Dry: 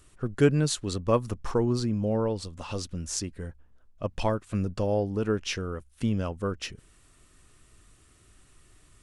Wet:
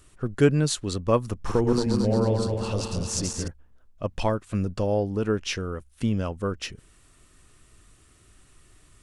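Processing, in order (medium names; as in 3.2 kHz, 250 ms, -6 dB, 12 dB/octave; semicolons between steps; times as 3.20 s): 1.30–3.48 s: backward echo that repeats 113 ms, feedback 75%, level -4 dB; trim +2 dB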